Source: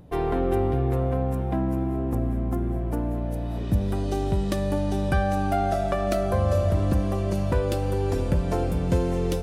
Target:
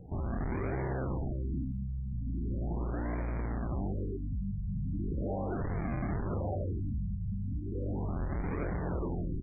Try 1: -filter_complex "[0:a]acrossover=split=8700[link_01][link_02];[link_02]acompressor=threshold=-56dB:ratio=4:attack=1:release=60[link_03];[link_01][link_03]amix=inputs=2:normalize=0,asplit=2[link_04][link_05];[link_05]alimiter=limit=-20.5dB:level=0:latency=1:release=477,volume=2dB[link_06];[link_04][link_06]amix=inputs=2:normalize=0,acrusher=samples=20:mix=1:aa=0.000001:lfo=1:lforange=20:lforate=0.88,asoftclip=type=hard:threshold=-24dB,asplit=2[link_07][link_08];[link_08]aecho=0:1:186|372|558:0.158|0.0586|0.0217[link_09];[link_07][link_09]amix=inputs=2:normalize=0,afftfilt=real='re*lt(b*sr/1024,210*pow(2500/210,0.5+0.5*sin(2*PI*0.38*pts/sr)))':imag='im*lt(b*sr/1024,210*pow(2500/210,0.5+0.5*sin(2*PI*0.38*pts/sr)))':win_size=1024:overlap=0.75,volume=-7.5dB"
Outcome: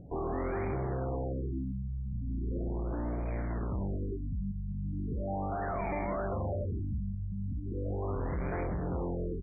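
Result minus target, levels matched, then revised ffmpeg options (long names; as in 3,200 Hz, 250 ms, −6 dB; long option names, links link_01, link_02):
sample-and-hold swept by an LFO: distortion −9 dB
-filter_complex "[0:a]acrossover=split=8700[link_01][link_02];[link_02]acompressor=threshold=-56dB:ratio=4:attack=1:release=60[link_03];[link_01][link_03]amix=inputs=2:normalize=0,asplit=2[link_04][link_05];[link_05]alimiter=limit=-20.5dB:level=0:latency=1:release=477,volume=2dB[link_06];[link_04][link_06]amix=inputs=2:normalize=0,acrusher=samples=65:mix=1:aa=0.000001:lfo=1:lforange=65:lforate=0.88,asoftclip=type=hard:threshold=-24dB,asplit=2[link_07][link_08];[link_08]aecho=0:1:186|372|558:0.158|0.0586|0.0217[link_09];[link_07][link_09]amix=inputs=2:normalize=0,afftfilt=real='re*lt(b*sr/1024,210*pow(2500/210,0.5+0.5*sin(2*PI*0.38*pts/sr)))':imag='im*lt(b*sr/1024,210*pow(2500/210,0.5+0.5*sin(2*PI*0.38*pts/sr)))':win_size=1024:overlap=0.75,volume=-7.5dB"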